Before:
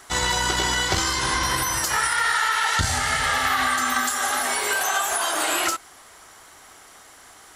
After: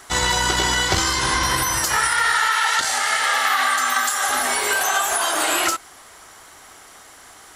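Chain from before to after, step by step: 2.48–4.29 HPF 500 Hz 12 dB/oct; gain +3 dB

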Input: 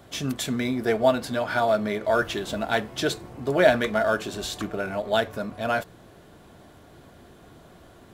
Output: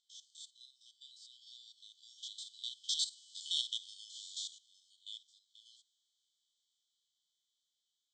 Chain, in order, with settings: stepped spectrum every 50 ms; Doppler pass-by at 3.35, 10 m/s, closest 1.9 m; brick-wall FIR band-pass 3000–8500 Hz; gain +8 dB

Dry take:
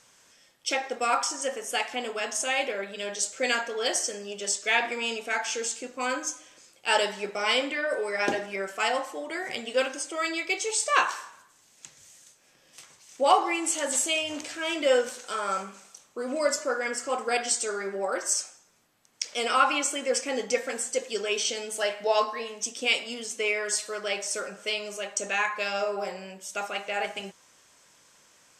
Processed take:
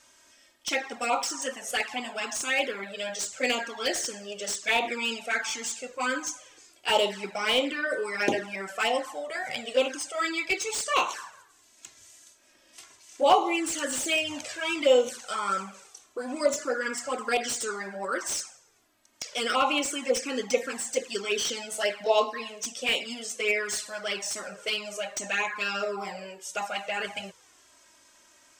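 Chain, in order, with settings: envelope flanger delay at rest 3.3 ms, full sweep at -21.5 dBFS; slew limiter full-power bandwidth 170 Hz; gain +3.5 dB

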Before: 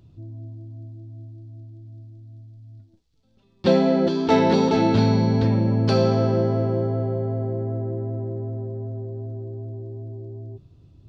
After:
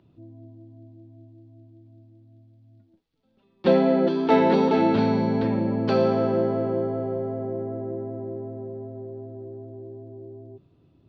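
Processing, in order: three-band isolator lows -16 dB, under 170 Hz, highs -18 dB, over 3600 Hz

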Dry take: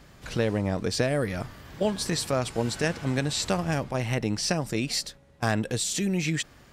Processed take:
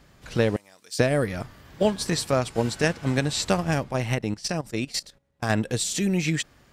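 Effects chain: 0.56–0.99 differentiator; 4.15–5.5 level quantiser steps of 14 dB; upward expander 1.5:1, over -38 dBFS; gain +5 dB

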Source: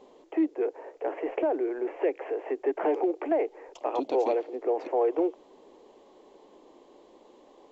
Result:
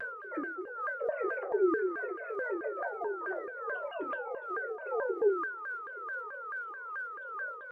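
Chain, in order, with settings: sine-wave speech; compressor 3:1, threshold -43 dBFS, peak gain reduction 20.5 dB; whine 1400 Hz -46 dBFS; limiter -38 dBFS, peak gain reduction 9 dB; phaser 0.27 Hz, delay 3.1 ms, feedback 54%; reverb RT60 0.40 s, pre-delay 3 ms, DRR 1 dB; shaped vibrato saw down 4.6 Hz, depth 250 cents; gain +6 dB

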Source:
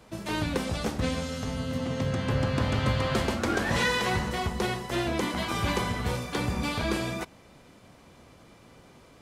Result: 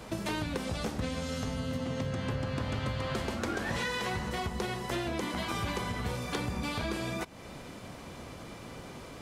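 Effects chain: compressor 5:1, threshold -41 dBFS, peak gain reduction 17.5 dB; gain +8.5 dB

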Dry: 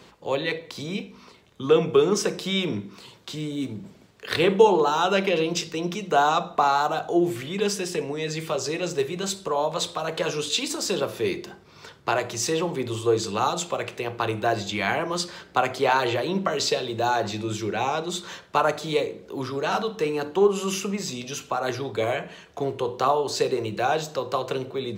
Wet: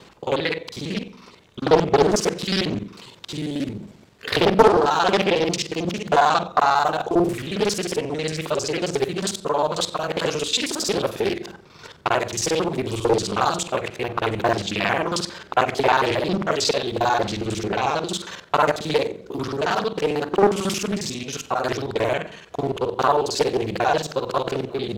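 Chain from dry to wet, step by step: local time reversal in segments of 45 ms; Doppler distortion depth 0.77 ms; gain +3.5 dB

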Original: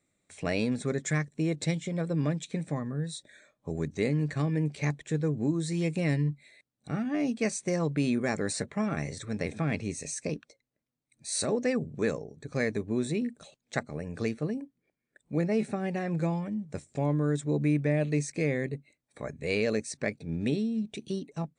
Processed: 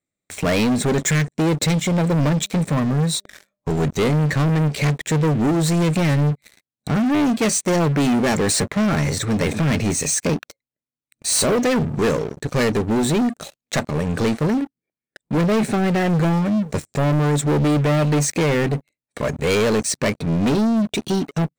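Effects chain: sample leveller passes 5; 2.36–3.72 de-hum 199.5 Hz, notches 3

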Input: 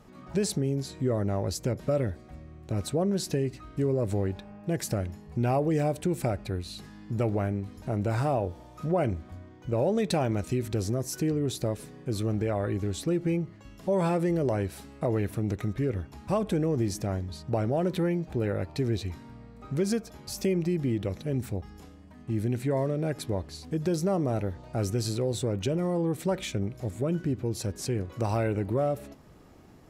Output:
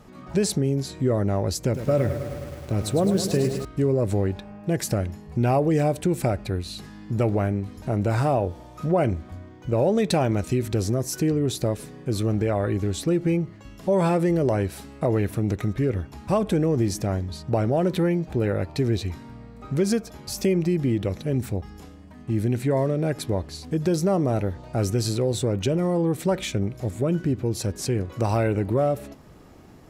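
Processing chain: 1.59–3.65 lo-fi delay 0.105 s, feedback 80%, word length 8-bit, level -9 dB; gain +5 dB

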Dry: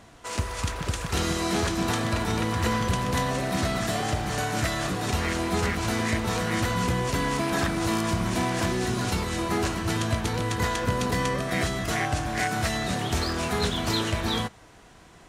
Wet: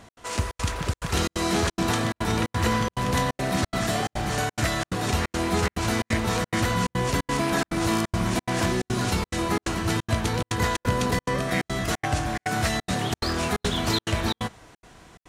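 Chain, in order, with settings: step gate "x.xxxx.xxxx.xx" 177 bpm -60 dB; gain +2 dB

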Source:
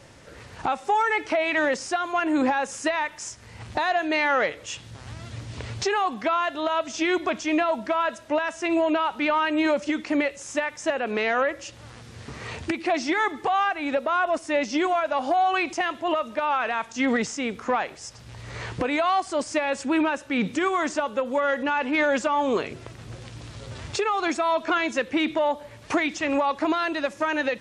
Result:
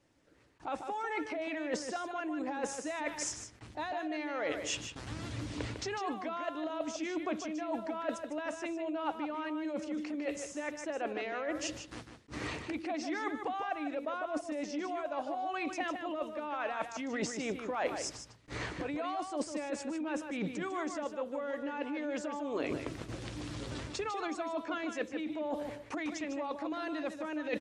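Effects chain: bell 300 Hz +14.5 dB 0.28 oct; limiter -15 dBFS, peak gain reduction 11.5 dB; dynamic EQ 590 Hz, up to +7 dB, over -38 dBFS, Q 1.8; gate with hold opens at -30 dBFS; reverse; compressor 10:1, threshold -30 dBFS, peak gain reduction 16 dB; reverse; harmonic-percussive split percussive +6 dB; outdoor echo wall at 26 m, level -7 dB; attack slew limiter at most 370 dB/s; gain -5.5 dB

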